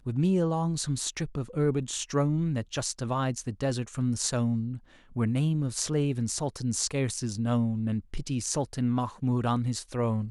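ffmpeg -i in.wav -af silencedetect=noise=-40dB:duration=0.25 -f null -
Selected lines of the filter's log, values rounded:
silence_start: 4.78
silence_end: 5.16 | silence_duration: 0.38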